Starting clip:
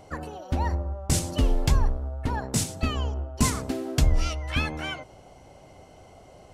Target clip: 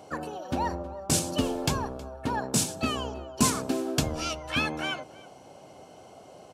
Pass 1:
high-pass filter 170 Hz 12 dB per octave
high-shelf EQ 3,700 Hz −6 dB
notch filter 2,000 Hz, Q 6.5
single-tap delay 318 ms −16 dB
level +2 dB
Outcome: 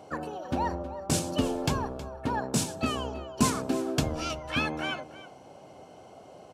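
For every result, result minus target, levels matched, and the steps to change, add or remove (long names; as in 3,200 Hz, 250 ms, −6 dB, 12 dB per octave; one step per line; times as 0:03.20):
echo-to-direct +6 dB; 8,000 Hz band −3.5 dB
change: single-tap delay 318 ms −22 dB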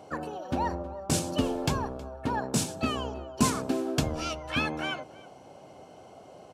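8,000 Hz band −3.5 dB
remove: high-shelf EQ 3,700 Hz −6 dB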